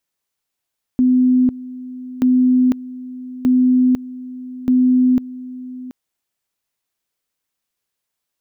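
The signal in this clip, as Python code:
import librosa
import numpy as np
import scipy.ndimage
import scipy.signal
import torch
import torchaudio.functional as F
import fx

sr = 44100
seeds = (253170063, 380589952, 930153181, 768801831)

y = fx.two_level_tone(sr, hz=253.0, level_db=-10.0, drop_db=18.0, high_s=0.5, low_s=0.73, rounds=4)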